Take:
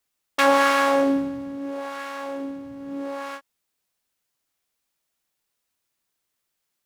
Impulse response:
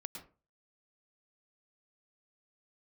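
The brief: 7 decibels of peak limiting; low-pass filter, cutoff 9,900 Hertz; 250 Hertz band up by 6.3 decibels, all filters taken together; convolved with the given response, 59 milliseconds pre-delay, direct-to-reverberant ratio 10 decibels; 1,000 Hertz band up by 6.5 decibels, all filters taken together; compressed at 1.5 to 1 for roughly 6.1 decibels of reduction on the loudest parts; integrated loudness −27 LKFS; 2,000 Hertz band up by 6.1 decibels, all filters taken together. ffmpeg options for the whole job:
-filter_complex "[0:a]lowpass=9900,equalizer=frequency=250:width_type=o:gain=6.5,equalizer=frequency=1000:width_type=o:gain=6,equalizer=frequency=2000:width_type=o:gain=5.5,acompressor=threshold=-24dB:ratio=1.5,alimiter=limit=-11dB:level=0:latency=1,asplit=2[link_01][link_02];[1:a]atrim=start_sample=2205,adelay=59[link_03];[link_02][link_03]afir=irnorm=-1:irlink=0,volume=-7dB[link_04];[link_01][link_04]amix=inputs=2:normalize=0,volume=-2dB"

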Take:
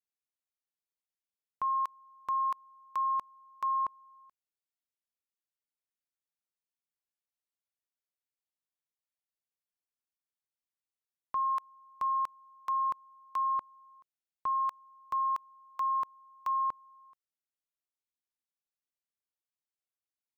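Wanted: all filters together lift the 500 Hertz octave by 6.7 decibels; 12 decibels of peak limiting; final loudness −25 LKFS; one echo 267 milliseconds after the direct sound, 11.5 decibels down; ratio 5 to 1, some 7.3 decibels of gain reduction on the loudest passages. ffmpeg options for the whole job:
ffmpeg -i in.wav -af "equalizer=frequency=500:width_type=o:gain=8.5,acompressor=threshold=-35dB:ratio=5,alimiter=level_in=12dB:limit=-24dB:level=0:latency=1,volume=-12dB,aecho=1:1:267:0.266,volume=18.5dB" out.wav

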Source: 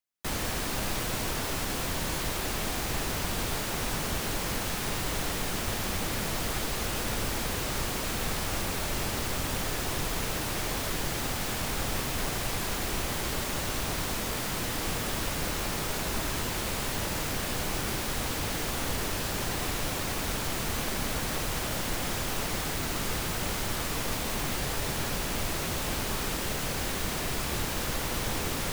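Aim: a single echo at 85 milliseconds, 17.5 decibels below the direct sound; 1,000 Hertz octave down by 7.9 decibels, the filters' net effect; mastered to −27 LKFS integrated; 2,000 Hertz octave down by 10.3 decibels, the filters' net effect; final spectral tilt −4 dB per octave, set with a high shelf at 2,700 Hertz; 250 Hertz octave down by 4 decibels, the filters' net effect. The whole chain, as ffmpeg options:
ffmpeg -i in.wav -af "equalizer=frequency=250:width_type=o:gain=-5,equalizer=frequency=1000:width_type=o:gain=-7,equalizer=frequency=2000:width_type=o:gain=-7.5,highshelf=frequency=2700:gain=-8,aecho=1:1:85:0.133,volume=9.5dB" out.wav

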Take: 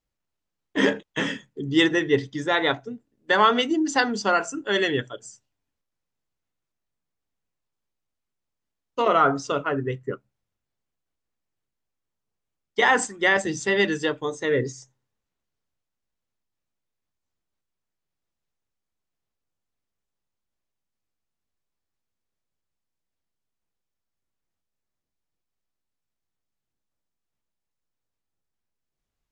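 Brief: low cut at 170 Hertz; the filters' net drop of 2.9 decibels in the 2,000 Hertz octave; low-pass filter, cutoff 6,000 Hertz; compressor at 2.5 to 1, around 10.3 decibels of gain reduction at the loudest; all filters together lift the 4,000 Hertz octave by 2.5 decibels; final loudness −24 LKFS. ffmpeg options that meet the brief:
ffmpeg -i in.wav -af "highpass=170,lowpass=6000,equalizer=frequency=2000:width_type=o:gain=-4.5,equalizer=frequency=4000:width_type=o:gain=5.5,acompressor=threshold=-30dB:ratio=2.5,volume=7.5dB" out.wav

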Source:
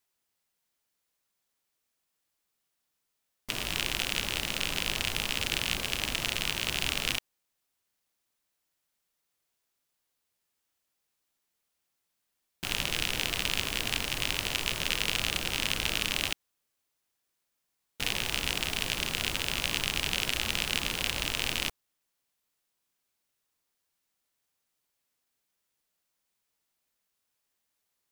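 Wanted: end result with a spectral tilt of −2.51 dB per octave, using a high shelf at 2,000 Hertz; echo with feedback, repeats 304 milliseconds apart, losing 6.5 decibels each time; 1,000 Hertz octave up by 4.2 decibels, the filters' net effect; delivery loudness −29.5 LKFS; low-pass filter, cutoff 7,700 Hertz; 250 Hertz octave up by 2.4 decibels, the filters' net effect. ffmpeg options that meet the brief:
ffmpeg -i in.wav -af "lowpass=7700,equalizer=frequency=250:width_type=o:gain=3,equalizer=frequency=1000:width_type=o:gain=6,highshelf=frequency=2000:gain=-3.5,aecho=1:1:304|608|912|1216|1520|1824:0.473|0.222|0.105|0.0491|0.0231|0.0109,volume=1.5dB" out.wav

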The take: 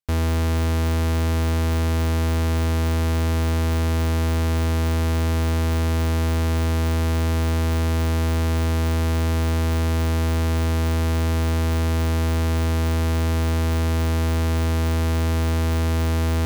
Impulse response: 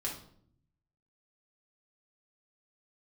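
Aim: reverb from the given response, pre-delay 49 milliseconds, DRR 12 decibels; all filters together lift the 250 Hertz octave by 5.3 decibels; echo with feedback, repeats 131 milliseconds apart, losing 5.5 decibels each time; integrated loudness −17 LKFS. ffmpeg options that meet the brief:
-filter_complex "[0:a]equalizer=frequency=250:width_type=o:gain=6,aecho=1:1:131|262|393|524|655|786|917:0.531|0.281|0.149|0.079|0.0419|0.0222|0.0118,asplit=2[link_01][link_02];[1:a]atrim=start_sample=2205,adelay=49[link_03];[link_02][link_03]afir=irnorm=-1:irlink=0,volume=-14dB[link_04];[link_01][link_04]amix=inputs=2:normalize=0"

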